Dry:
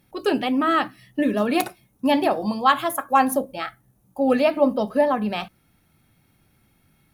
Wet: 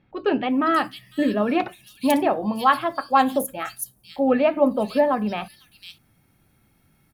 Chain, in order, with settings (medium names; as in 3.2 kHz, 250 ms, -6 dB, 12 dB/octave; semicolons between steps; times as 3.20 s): bands offset in time lows, highs 500 ms, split 3.4 kHz